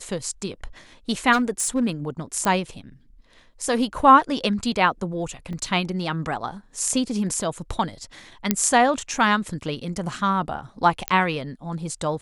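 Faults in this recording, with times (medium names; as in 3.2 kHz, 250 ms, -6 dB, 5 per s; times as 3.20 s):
1.32–1.84 s: clipped -16.5 dBFS
2.45 s: pop -10 dBFS
5.53 s: dropout 3.4 ms
8.51 s: pop -3 dBFS
11.08 s: pop -6 dBFS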